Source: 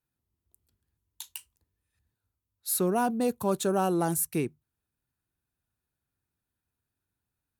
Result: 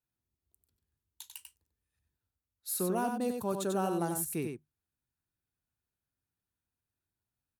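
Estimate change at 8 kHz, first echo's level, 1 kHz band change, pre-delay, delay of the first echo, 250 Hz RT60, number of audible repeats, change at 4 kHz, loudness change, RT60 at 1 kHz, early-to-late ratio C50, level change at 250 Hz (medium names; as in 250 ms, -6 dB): -5.5 dB, -5.5 dB, -5.5 dB, no reverb, 94 ms, no reverb, 1, -5.5 dB, -5.5 dB, no reverb, no reverb, -5.5 dB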